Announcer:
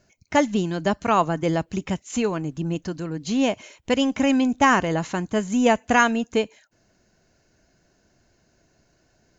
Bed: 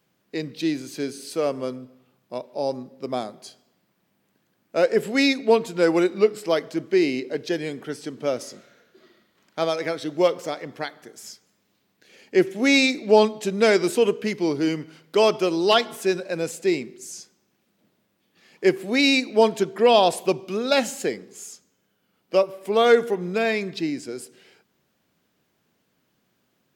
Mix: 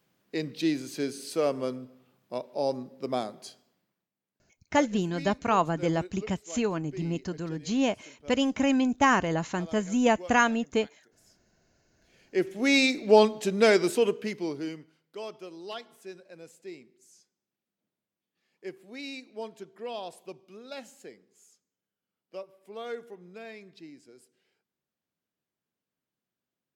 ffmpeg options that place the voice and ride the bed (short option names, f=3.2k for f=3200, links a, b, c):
-filter_complex "[0:a]adelay=4400,volume=-4.5dB[a];[1:a]volume=17.5dB,afade=t=out:st=3.5:d=0.58:silence=0.1,afade=t=in:st=11.87:d=1.15:silence=0.1,afade=t=out:st=13.68:d=1.29:silence=0.11885[b];[a][b]amix=inputs=2:normalize=0"